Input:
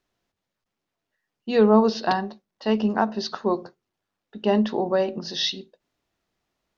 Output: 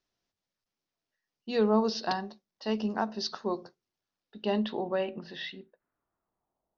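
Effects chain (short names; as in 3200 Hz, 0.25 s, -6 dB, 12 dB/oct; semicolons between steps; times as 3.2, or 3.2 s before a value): low-pass sweep 5600 Hz -> 780 Hz, 4.15–6.66; gain -8.5 dB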